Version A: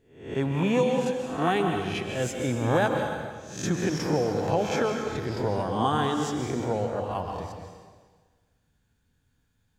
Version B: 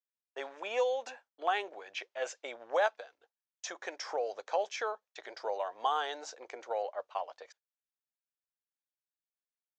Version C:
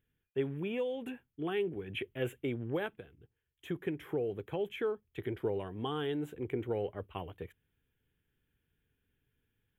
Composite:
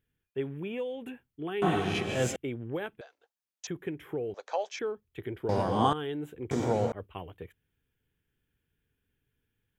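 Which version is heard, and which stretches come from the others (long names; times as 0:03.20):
C
0:01.62–0:02.36: punch in from A
0:03.01–0:03.67: punch in from B
0:04.34–0:04.79: punch in from B
0:05.49–0:05.93: punch in from A
0:06.51–0:06.92: punch in from A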